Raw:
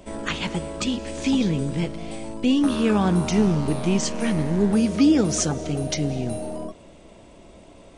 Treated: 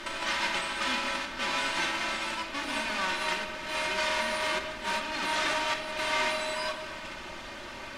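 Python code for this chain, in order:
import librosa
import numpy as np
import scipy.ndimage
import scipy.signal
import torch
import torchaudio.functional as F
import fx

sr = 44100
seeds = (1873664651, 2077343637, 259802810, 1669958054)

p1 = fx.envelope_flatten(x, sr, power=0.1)
p2 = fx.fuzz(p1, sr, gain_db=39.0, gate_db=-40.0)
p3 = p1 + F.gain(torch.from_numpy(p2), -8.5).numpy()
p4 = fx.chopper(p3, sr, hz=0.87, depth_pct=60, duty_pct=20)
p5 = p4 + fx.echo_single(p4, sr, ms=211, db=-15.0, dry=0)
p6 = fx.over_compress(p5, sr, threshold_db=-25.0, ratio=-0.5)
p7 = fx.highpass(p6, sr, hz=1100.0, slope=6)
p8 = fx.quant_dither(p7, sr, seeds[0], bits=6, dither='triangular')
p9 = scipy.signal.sosfilt(scipy.signal.butter(2, 2400.0, 'lowpass', fs=sr, output='sos'), p8)
p10 = p9 + 0.58 * np.pad(p9, (int(3.3 * sr / 1000.0), 0))[:len(p9)]
p11 = fx.room_shoebox(p10, sr, seeds[1], volume_m3=1700.0, walls='mixed', distance_m=1.1)
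y = F.gain(torch.from_numpy(p11), 1.0).numpy()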